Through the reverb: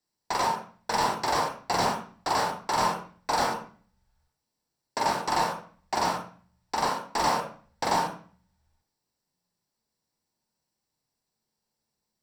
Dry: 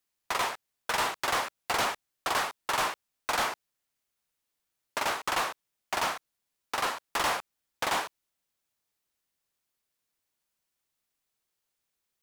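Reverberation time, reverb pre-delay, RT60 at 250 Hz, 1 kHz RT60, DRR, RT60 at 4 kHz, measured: 0.40 s, 26 ms, 0.70 s, 0.45 s, 2.0 dB, 0.40 s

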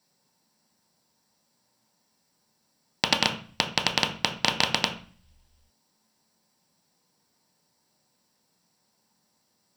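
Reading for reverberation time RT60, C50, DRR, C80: 0.40 s, 10.5 dB, 2.0 dB, 14.5 dB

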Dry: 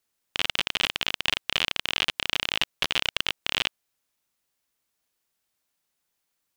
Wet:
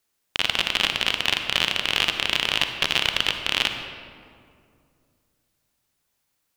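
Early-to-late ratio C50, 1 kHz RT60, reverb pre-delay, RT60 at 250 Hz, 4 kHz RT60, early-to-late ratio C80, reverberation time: 6.5 dB, 2.1 s, 40 ms, 2.9 s, 1.2 s, 7.5 dB, 2.3 s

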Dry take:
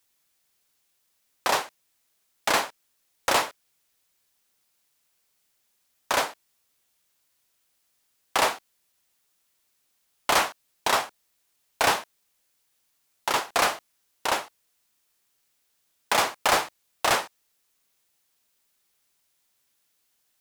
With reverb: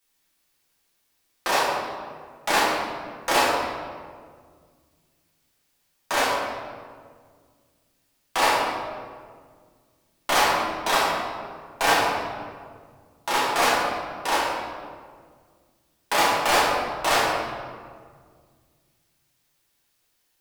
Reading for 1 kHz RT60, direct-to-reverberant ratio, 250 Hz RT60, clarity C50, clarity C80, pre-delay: 1.7 s, -7.5 dB, 2.5 s, -0.5 dB, 2.0 dB, 5 ms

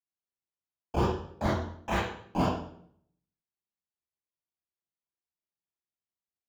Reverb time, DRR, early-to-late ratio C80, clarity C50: 0.65 s, -7.0 dB, 4.5 dB, -1.0 dB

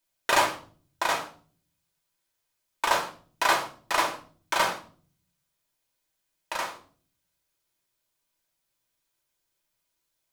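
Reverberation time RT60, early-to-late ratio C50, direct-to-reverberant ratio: 0.45 s, 11.5 dB, 1.0 dB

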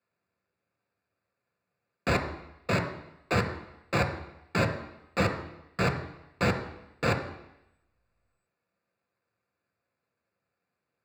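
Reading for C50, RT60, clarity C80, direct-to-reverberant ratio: 10.0 dB, 0.85 s, 12.0 dB, 5.0 dB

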